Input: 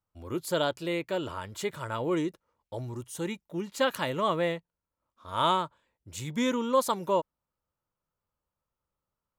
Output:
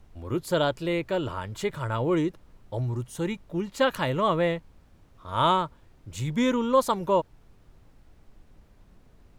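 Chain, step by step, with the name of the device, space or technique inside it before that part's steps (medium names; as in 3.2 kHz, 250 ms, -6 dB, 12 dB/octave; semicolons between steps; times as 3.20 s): car interior (peaking EQ 120 Hz +6.5 dB; treble shelf 4.3 kHz -6.5 dB; brown noise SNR 24 dB); trim +3.5 dB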